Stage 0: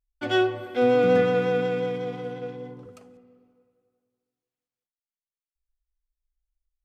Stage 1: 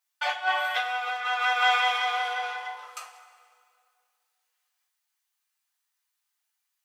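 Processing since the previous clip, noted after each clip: steep high-pass 780 Hz 36 dB/oct; negative-ratio compressor -37 dBFS, ratio -0.5; two-slope reverb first 0.26 s, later 1.9 s, from -18 dB, DRR -3.5 dB; gain +6.5 dB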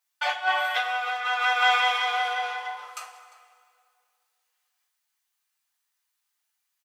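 outdoor echo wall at 60 m, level -17 dB; gain +1.5 dB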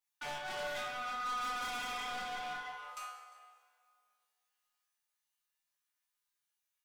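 resonator 73 Hz, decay 0.49 s, harmonics all, mix 90%; hard clip -39.5 dBFS, distortion -6 dB; shoebox room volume 730 m³, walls furnished, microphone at 1.3 m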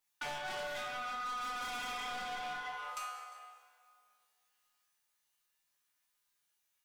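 compressor, threshold -44 dBFS, peak gain reduction 8.5 dB; gain +6 dB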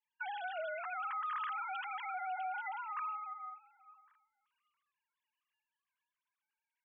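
sine-wave speech; limiter -35.5 dBFS, peak gain reduction 7.5 dB; gain +2.5 dB

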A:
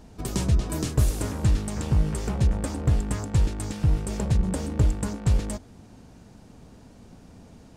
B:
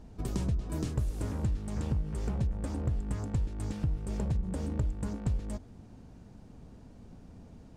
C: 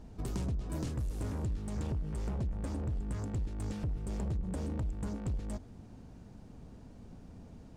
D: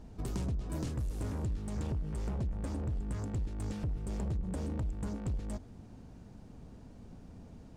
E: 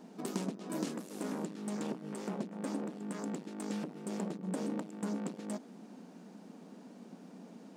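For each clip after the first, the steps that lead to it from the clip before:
tilt -1.5 dB/oct; compressor 6:1, threshold -21 dBFS, peak gain reduction 11 dB; gain -6.5 dB
soft clip -29.5 dBFS, distortion -12 dB
nothing audible
brick-wall FIR high-pass 170 Hz; gain +4 dB

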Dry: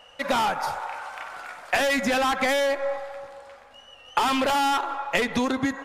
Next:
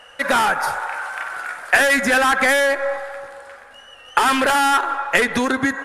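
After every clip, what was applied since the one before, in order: fifteen-band EQ 400 Hz +4 dB, 1600 Hz +11 dB, 10000 Hz +11 dB; gain +2.5 dB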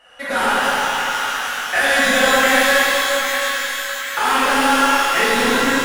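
on a send: split-band echo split 1200 Hz, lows 0.102 s, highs 0.792 s, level -6 dB; on the sum: shimmer reverb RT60 2.9 s, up +12 st, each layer -8 dB, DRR -10.5 dB; gain -10 dB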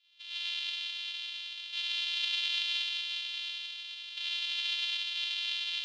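sample sorter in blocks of 128 samples; Butterworth band-pass 3400 Hz, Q 2.5; gain -5 dB

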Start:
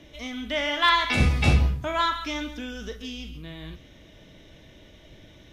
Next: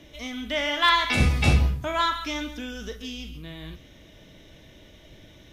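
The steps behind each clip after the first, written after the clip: high shelf 8000 Hz +6.5 dB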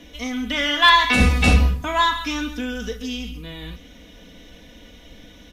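comb 4.1 ms, depth 77%; gain +3.5 dB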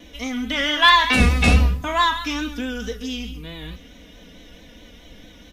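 vibrato 4.6 Hz 52 cents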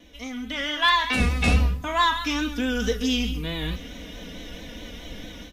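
AGC gain up to 13.5 dB; gain -7 dB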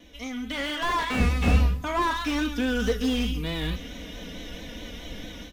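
slew limiter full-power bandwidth 83 Hz

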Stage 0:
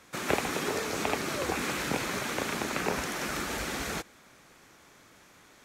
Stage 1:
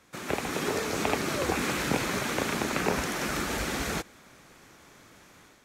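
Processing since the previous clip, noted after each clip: low shelf 340 Hz +3.5 dB; AGC gain up to 7 dB; gain -5 dB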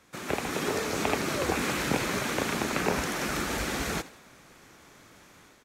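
frequency-shifting echo 81 ms, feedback 44%, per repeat +110 Hz, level -18 dB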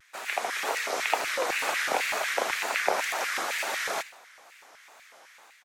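LFO high-pass square 4 Hz 690–1900 Hz; wow and flutter 130 cents

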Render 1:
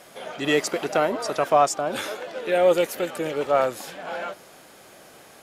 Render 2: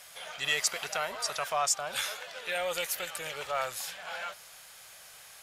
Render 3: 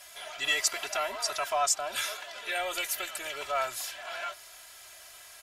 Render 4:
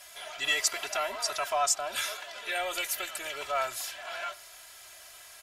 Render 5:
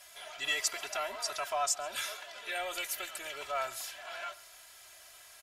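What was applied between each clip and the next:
in parallel at +2 dB: limiter -15 dBFS, peak gain reduction 7.5 dB; on the sum: passive tone stack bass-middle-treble 10-0-10; gain -4.5 dB
comb 3 ms, depth 93%; gain -1.5 dB
reverb, pre-delay 56 ms, DRR 23 dB
echo 0.135 s -22.5 dB; gain -4.5 dB

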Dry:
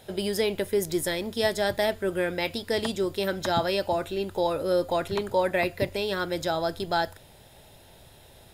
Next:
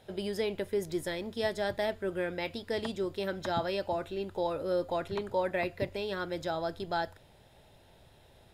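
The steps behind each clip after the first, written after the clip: LPF 3700 Hz 6 dB/oct; gain -6 dB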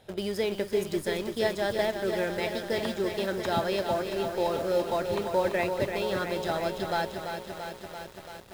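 in parallel at -11 dB: bit-crush 6-bit; on the sum: lo-fi delay 0.338 s, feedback 80%, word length 8-bit, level -7 dB; gain +1 dB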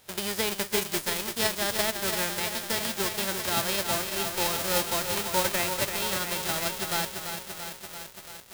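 spectral whitening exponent 0.3

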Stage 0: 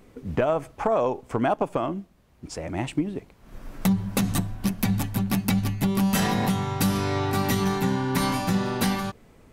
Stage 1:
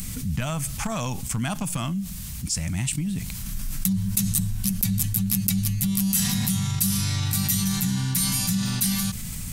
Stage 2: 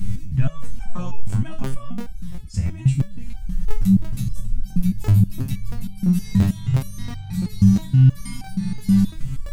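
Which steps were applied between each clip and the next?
EQ curve 190 Hz 0 dB, 390 Hz -28 dB, 8900 Hz +14 dB; fast leveller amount 70%; gain -6 dB
RIAA curve playback; crackling interface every 0.34 s, samples 1024, repeat, from 0.6; stepped resonator 6.3 Hz 99–770 Hz; gain +7 dB

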